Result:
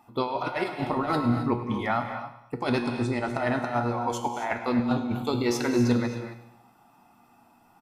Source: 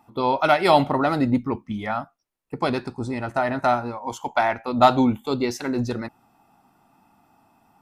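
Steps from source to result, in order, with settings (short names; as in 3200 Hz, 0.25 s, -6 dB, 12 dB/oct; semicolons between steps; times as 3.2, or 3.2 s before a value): low shelf 260 Hz -3.5 dB; negative-ratio compressor -24 dBFS, ratio -0.5; resonator 120 Hz, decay 0.63 s, harmonics all, mix 70%; feedback echo 0.101 s, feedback 51%, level -15 dB; non-linear reverb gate 0.29 s rising, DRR 7.5 dB; gain +6 dB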